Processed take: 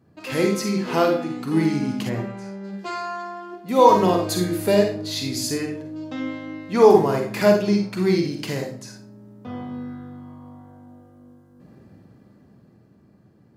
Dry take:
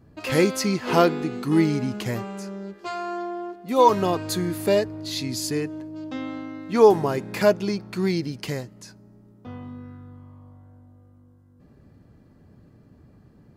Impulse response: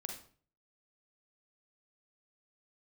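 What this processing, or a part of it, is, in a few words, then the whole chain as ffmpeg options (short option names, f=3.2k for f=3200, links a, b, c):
far laptop microphone: -filter_complex "[1:a]atrim=start_sample=2205[a];[0:a][a]afir=irnorm=-1:irlink=0,highpass=110,dynaudnorm=f=220:g=17:m=10dB,asplit=3[b][c][d];[b]afade=t=out:st=2.08:d=0.02[e];[c]aemphasis=mode=reproduction:type=75kf,afade=t=in:st=2.08:d=0.02,afade=t=out:st=2.63:d=0.02[f];[d]afade=t=in:st=2.63:d=0.02[g];[e][f][g]amix=inputs=3:normalize=0"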